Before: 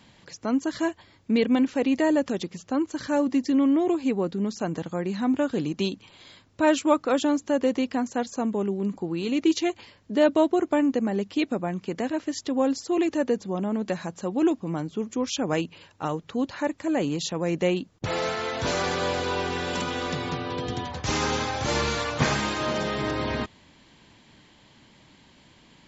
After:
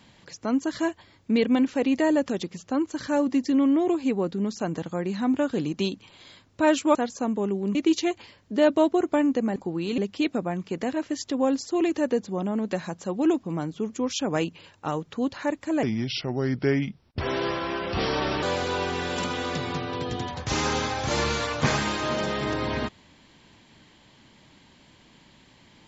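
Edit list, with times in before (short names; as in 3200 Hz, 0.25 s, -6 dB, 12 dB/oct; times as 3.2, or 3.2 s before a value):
6.95–8.12 cut
8.92–9.34 move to 11.15
17–19 speed 77%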